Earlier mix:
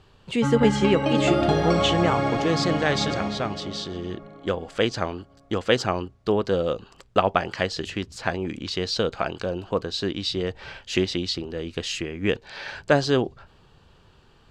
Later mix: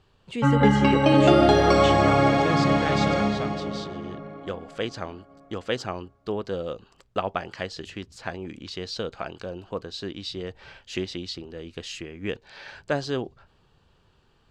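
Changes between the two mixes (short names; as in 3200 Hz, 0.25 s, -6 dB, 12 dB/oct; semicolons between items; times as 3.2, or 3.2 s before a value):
speech -7.0 dB; background +5.0 dB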